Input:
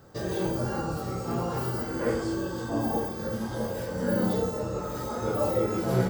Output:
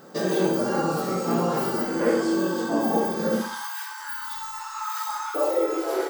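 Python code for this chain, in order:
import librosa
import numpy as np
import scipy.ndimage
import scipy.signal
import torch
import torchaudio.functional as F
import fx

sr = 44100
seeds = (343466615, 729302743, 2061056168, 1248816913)

y = fx.rider(x, sr, range_db=10, speed_s=0.5)
y = fx.brickwall_highpass(y, sr, low_hz=fx.steps((0.0, 150.0), (3.4, 820.0), (5.34, 280.0)))
y = fx.echo_feedback(y, sr, ms=64, feedback_pct=34, wet_db=-10)
y = F.gain(torch.from_numpy(y), 5.5).numpy()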